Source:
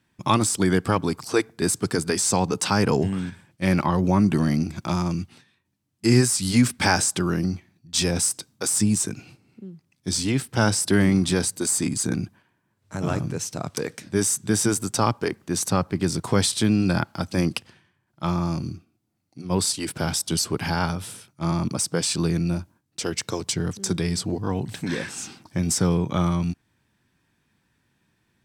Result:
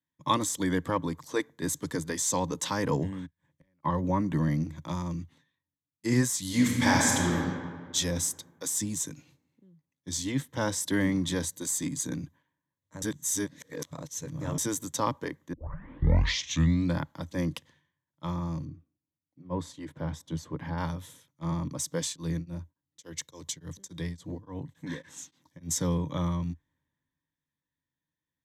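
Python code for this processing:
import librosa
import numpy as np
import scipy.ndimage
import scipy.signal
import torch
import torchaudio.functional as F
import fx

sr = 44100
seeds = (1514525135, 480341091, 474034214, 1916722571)

y = fx.gate_flip(x, sr, shuts_db=-29.0, range_db=-35, at=(3.25, 3.83), fade=0.02)
y = fx.reverb_throw(y, sr, start_s=6.44, length_s=0.91, rt60_s=2.7, drr_db=-2.0)
y = fx.lowpass(y, sr, hz=1500.0, slope=6, at=(18.65, 20.78))
y = fx.tremolo_abs(y, sr, hz=3.5, at=(22.03, 25.74))
y = fx.edit(y, sr, fx.reverse_span(start_s=13.02, length_s=1.56),
    fx.tape_start(start_s=15.53, length_s=1.42), tone=tone)
y = fx.ripple_eq(y, sr, per_octave=1.1, db=10)
y = fx.band_widen(y, sr, depth_pct=40)
y = y * librosa.db_to_amplitude(-8.5)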